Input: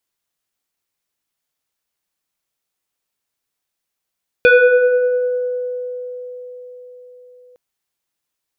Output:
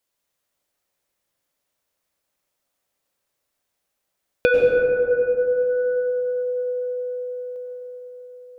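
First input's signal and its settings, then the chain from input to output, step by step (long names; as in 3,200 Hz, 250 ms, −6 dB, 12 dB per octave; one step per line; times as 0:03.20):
two-operator FM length 3.11 s, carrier 497 Hz, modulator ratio 1.98, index 1.7, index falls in 2.20 s exponential, decay 4.84 s, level −5.5 dB
parametric band 560 Hz +8 dB 0.36 octaves
downward compressor 3 to 1, threshold −19 dBFS
dense smooth reverb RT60 3.7 s, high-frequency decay 0.25×, pre-delay 85 ms, DRR −1 dB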